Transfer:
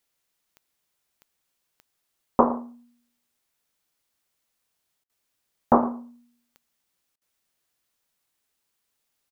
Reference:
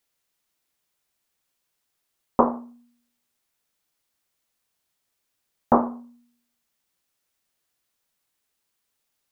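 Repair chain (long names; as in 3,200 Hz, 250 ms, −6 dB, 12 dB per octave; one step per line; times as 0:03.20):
click removal
repair the gap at 0:05.04/0:07.16, 54 ms
echo removal 112 ms −17.5 dB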